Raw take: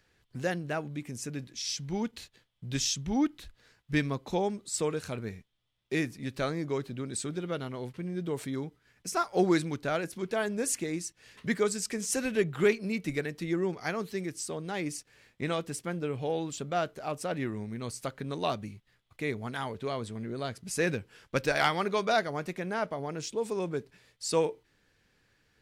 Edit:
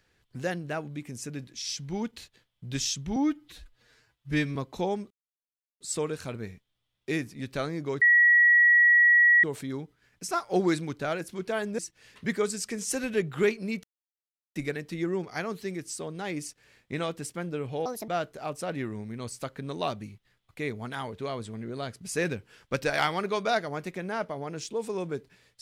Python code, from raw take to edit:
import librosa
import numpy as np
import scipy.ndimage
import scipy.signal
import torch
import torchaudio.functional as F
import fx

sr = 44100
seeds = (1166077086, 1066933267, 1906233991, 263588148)

y = fx.edit(x, sr, fx.stretch_span(start_s=3.16, length_s=0.93, factor=1.5),
    fx.insert_silence(at_s=4.64, length_s=0.7),
    fx.bleep(start_s=6.85, length_s=1.42, hz=1920.0, db=-15.5),
    fx.cut(start_s=10.62, length_s=0.38),
    fx.insert_silence(at_s=13.05, length_s=0.72),
    fx.speed_span(start_s=16.35, length_s=0.35, speed=1.55), tone=tone)